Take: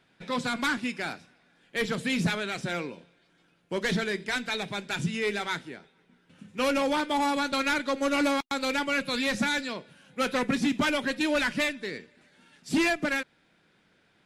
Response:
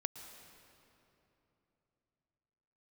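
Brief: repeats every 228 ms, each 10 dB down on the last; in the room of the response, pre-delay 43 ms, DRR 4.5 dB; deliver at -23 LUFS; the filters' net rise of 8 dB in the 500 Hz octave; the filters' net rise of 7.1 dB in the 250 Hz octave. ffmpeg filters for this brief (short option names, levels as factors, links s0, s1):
-filter_complex "[0:a]equalizer=f=250:t=o:g=6,equalizer=f=500:t=o:g=8,aecho=1:1:228|456|684|912:0.316|0.101|0.0324|0.0104,asplit=2[s0][s1];[1:a]atrim=start_sample=2205,adelay=43[s2];[s1][s2]afir=irnorm=-1:irlink=0,volume=0.631[s3];[s0][s3]amix=inputs=2:normalize=0,volume=0.891"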